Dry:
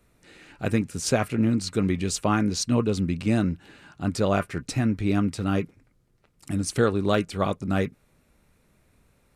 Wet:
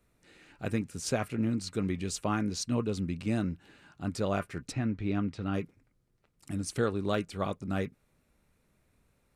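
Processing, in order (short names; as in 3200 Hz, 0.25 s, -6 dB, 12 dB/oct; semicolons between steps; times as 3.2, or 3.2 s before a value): 4.72–5.54 LPF 4000 Hz 12 dB/oct; gain -7.5 dB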